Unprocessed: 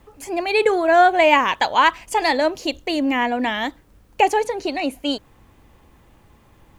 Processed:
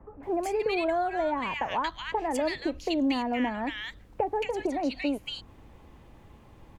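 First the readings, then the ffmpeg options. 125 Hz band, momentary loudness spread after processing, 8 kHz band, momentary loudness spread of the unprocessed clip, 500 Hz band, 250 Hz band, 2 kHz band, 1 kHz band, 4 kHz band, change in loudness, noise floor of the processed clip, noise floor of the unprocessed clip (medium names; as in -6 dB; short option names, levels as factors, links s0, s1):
no reading, 7 LU, -11.0 dB, 12 LU, -9.5 dB, -5.5 dB, -14.0 dB, -12.5 dB, -11.5 dB, -10.5 dB, -54 dBFS, -54 dBFS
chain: -filter_complex "[0:a]aemphasis=mode=reproduction:type=cd,acrossover=split=190[s0][s1];[s1]acompressor=threshold=0.0501:ratio=6[s2];[s0][s2]amix=inputs=2:normalize=0,acrossover=split=1500[s3][s4];[s4]adelay=230[s5];[s3][s5]amix=inputs=2:normalize=0"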